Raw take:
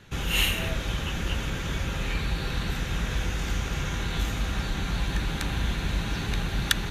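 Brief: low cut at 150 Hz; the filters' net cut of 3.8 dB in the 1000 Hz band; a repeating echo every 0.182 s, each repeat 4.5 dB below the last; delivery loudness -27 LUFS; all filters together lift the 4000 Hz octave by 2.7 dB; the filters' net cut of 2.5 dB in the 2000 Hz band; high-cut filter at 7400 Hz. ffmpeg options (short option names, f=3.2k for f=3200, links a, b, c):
-af "highpass=150,lowpass=7.4k,equalizer=f=1k:t=o:g=-4,equalizer=f=2k:t=o:g=-4.5,equalizer=f=4k:t=o:g=6,aecho=1:1:182|364|546|728|910|1092|1274|1456|1638:0.596|0.357|0.214|0.129|0.0772|0.0463|0.0278|0.0167|0.01,volume=2dB"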